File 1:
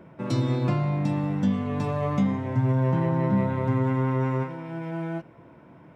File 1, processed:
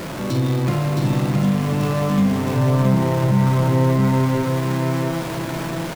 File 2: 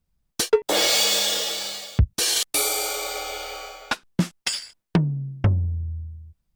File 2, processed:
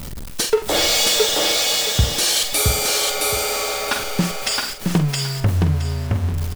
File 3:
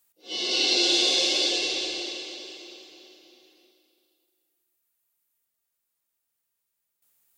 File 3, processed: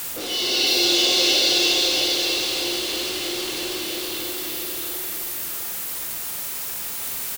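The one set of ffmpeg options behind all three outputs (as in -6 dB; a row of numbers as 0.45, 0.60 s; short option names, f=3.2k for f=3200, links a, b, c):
-filter_complex "[0:a]aeval=exprs='val(0)+0.5*0.0596*sgn(val(0))':c=same,asplit=2[a][b];[b]adelay=46,volume=-9dB[c];[a][c]amix=inputs=2:normalize=0,aecho=1:1:668|1336|2004:0.708|0.163|0.0375"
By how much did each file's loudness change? +6.5, +4.5, +1.5 LU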